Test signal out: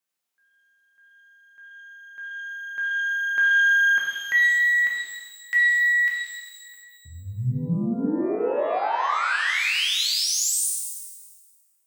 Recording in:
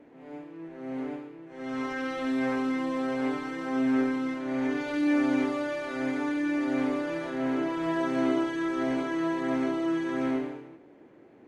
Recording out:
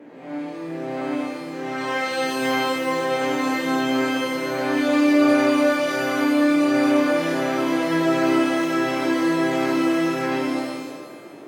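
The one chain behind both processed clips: high-pass 130 Hz 24 dB/octave; in parallel at -0.5 dB: compression, threshold -35 dBFS; on the sum: pitch-shifted reverb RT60 1.4 s, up +12 st, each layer -8 dB, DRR -3 dB; trim +2 dB

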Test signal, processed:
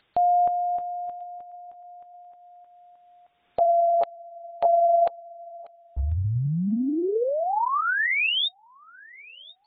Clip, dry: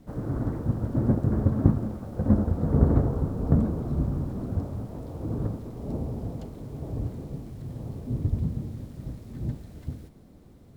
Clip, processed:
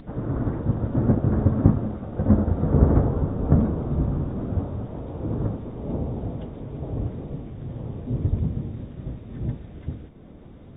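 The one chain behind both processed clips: upward compressor, threshold -41 dBFS; on a send: feedback echo behind a high-pass 1041 ms, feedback 30%, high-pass 1.5 kHz, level -22 dB; on the sum: trim +3 dB; AAC 16 kbps 32 kHz

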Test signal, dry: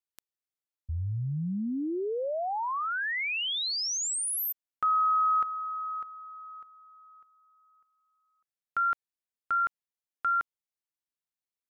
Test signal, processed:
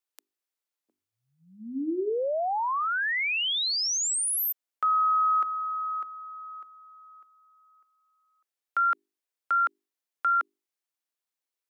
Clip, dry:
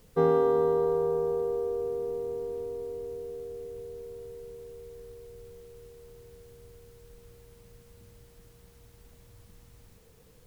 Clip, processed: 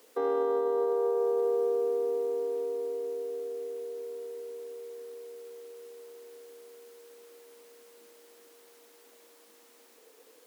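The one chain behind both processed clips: peak limiter -23.5 dBFS; steep high-pass 270 Hz 48 dB/octave; hum notches 50/100/150/200/250/300/350/400 Hz; trim +3.5 dB

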